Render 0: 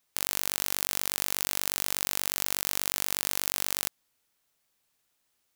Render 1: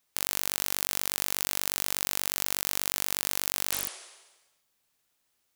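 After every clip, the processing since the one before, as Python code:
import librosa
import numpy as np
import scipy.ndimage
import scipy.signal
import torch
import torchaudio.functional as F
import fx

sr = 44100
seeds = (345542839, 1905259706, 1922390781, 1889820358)

y = fx.spec_repair(x, sr, seeds[0], start_s=3.76, length_s=0.87, low_hz=340.0, high_hz=11000.0, source='both')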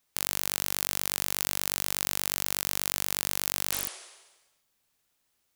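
y = fx.low_shelf(x, sr, hz=190.0, db=3.5)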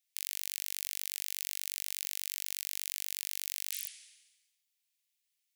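y = scipy.signal.sosfilt(scipy.signal.butter(6, 2000.0, 'highpass', fs=sr, output='sos'), x)
y = y * librosa.db_to_amplitude(-7.0)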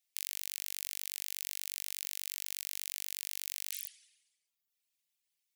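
y = fx.dereverb_blind(x, sr, rt60_s=0.83)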